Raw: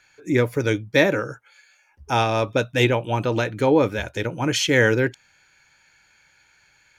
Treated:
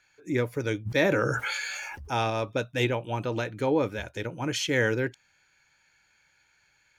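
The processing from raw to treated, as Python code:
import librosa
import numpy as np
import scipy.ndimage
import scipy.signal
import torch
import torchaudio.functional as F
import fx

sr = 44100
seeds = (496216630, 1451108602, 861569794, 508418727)

y = fx.sustainer(x, sr, db_per_s=20.0, at=(0.85, 2.29), fade=0.02)
y = y * librosa.db_to_amplitude(-7.5)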